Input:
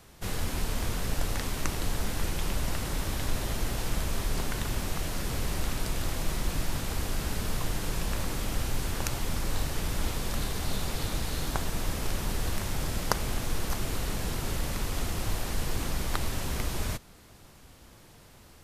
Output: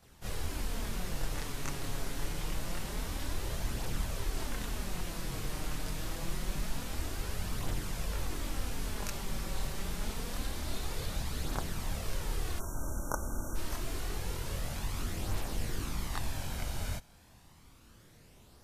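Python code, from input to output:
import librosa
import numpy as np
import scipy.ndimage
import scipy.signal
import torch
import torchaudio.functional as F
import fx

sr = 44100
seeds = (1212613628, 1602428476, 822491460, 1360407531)

y = fx.spec_erase(x, sr, start_s=12.57, length_s=0.99, low_hz=1600.0, high_hz=5500.0)
y = fx.chorus_voices(y, sr, voices=2, hz=0.13, base_ms=25, depth_ms=3.7, mix_pct=60)
y = y * librosa.db_to_amplitude(-3.0)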